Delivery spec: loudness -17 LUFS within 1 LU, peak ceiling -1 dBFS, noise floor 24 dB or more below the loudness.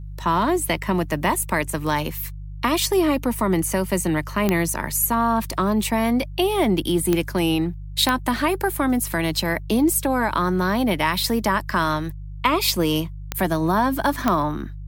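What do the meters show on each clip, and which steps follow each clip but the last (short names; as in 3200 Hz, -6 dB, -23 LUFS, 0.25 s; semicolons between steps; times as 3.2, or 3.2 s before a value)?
clicks 5; hum 50 Hz; harmonics up to 150 Hz; hum level -31 dBFS; loudness -21.5 LUFS; peak -4.0 dBFS; loudness target -17.0 LUFS
-> de-click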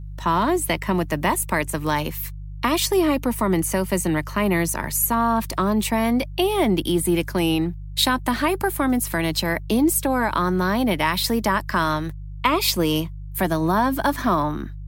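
clicks 0; hum 50 Hz; harmonics up to 150 Hz; hum level -31 dBFS
-> de-hum 50 Hz, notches 3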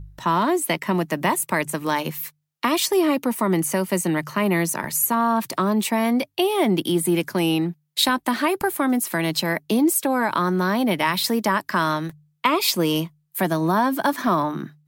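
hum none; loudness -22.0 LUFS; peak -6.5 dBFS; loudness target -17.0 LUFS
-> gain +5 dB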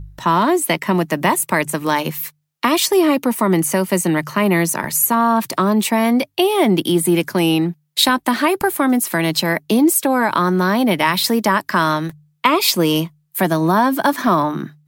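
loudness -17.0 LUFS; peak -1.5 dBFS; noise floor -63 dBFS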